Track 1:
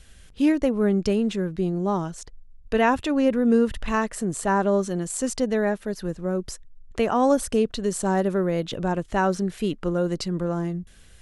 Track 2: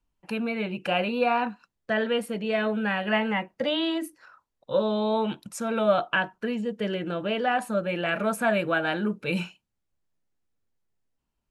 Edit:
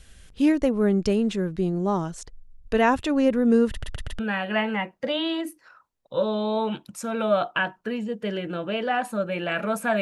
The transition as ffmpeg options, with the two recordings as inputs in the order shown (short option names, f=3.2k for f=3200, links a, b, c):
-filter_complex "[0:a]apad=whole_dur=10.01,atrim=end=10.01,asplit=4[a][b][c][d];[a]atrim=end=3.832[e];[b]atrim=start=3.708:end=3.832[f];[c]atrim=start=3.708:end=3.832[g];[d]atrim=start=3.708:end=3.832[h];[1:a]atrim=start=2.758:end=8.58[i];[e][f]acrossfade=d=0.004:c1=hsin:c2=hsin[j];[j][g]acrossfade=d=0.004:c1=hsin:c2=hsin[k];[k][h]acrossfade=d=0.004:c1=hsin:c2=hsin[l];[l][i]acrossfade=d=0.004:c1=hsin:c2=hsin"